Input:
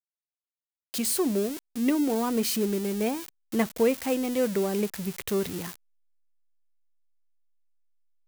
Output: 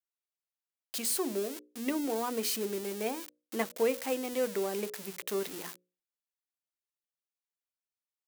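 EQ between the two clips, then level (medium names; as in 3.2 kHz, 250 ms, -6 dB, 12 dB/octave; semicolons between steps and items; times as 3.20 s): high-pass 330 Hz 12 dB/octave; hum notches 60/120/180/240/300/360/420/480/540/600 Hz; -3.5 dB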